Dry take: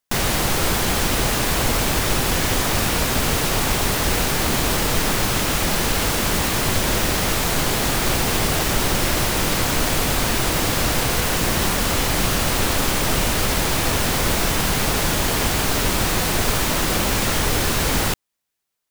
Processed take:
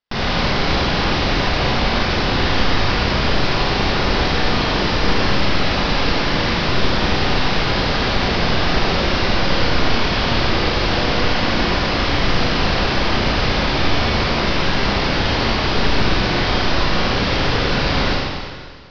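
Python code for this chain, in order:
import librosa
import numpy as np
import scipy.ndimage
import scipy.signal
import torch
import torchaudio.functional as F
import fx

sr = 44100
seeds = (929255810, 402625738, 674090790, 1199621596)

y = scipy.signal.sosfilt(scipy.signal.butter(12, 5300.0, 'lowpass', fs=sr, output='sos'), x)
y = fx.rev_schroeder(y, sr, rt60_s=1.8, comb_ms=31, drr_db=-4.0)
y = y * librosa.db_to_amplitude(-2.0)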